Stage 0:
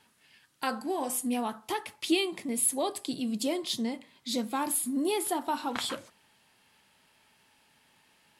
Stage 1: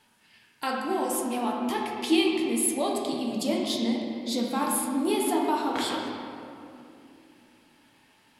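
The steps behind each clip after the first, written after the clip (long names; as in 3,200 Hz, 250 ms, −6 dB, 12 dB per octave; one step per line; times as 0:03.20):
convolution reverb RT60 2.7 s, pre-delay 7 ms, DRR −1.5 dB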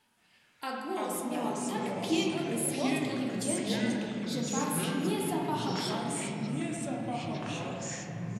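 single-tap delay 303 ms −21 dB
delay with pitch and tempo change per echo 172 ms, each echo −4 semitones, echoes 3
level −7 dB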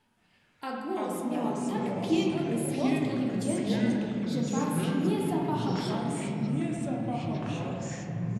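spectral tilt −2 dB per octave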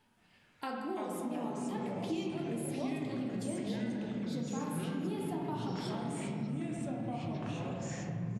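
downward compressor 3 to 1, threshold −36 dBFS, peak gain reduction 11.5 dB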